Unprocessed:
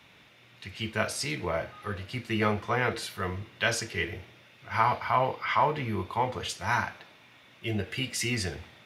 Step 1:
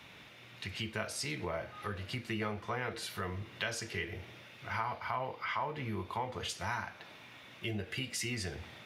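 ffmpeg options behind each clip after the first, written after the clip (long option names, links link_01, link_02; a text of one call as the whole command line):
ffmpeg -i in.wav -af "acompressor=threshold=-40dB:ratio=3,volume=2.5dB" out.wav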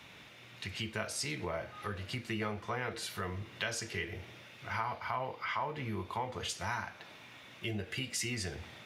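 ffmpeg -i in.wav -af "equalizer=frequency=7200:width_type=o:width=0.77:gain=3" out.wav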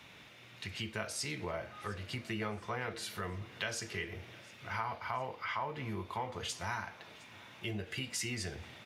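ffmpeg -i in.wav -af "aecho=1:1:711|1422|2133|2844:0.0794|0.0405|0.0207|0.0105,volume=-1.5dB" out.wav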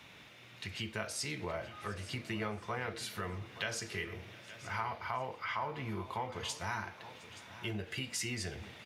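ffmpeg -i in.wav -af "aecho=1:1:874:0.168" out.wav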